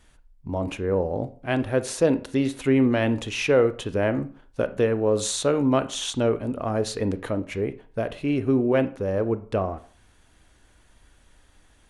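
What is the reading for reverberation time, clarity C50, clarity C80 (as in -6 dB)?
0.45 s, 16.0 dB, 20.5 dB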